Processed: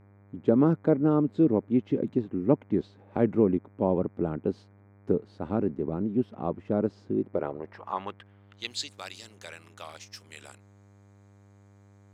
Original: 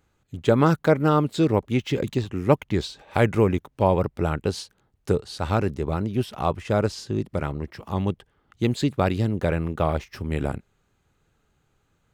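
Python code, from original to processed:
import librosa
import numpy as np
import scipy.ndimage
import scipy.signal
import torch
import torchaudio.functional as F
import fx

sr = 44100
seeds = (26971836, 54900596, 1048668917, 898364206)

y = fx.filter_sweep_bandpass(x, sr, from_hz=250.0, to_hz=6500.0, start_s=7.1, end_s=8.91, q=1.5)
y = fx.low_shelf(y, sr, hz=160.0, db=-9.5)
y = fx.dmg_buzz(y, sr, base_hz=100.0, harmonics=24, level_db=-60.0, tilt_db=-7, odd_only=False)
y = F.gain(torch.from_numpy(y), 4.0).numpy()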